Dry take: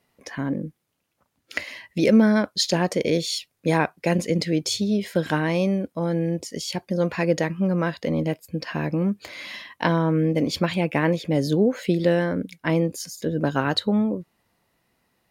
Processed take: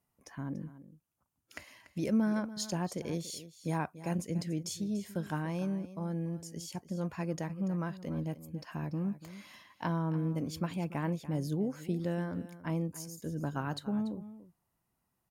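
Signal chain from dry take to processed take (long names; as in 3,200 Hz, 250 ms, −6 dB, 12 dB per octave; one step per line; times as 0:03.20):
octave-band graphic EQ 250/500/2,000/4,000 Hz −4/−10/−10/−11 dB
on a send: single-tap delay 288 ms −15 dB
on the sum: level −7 dB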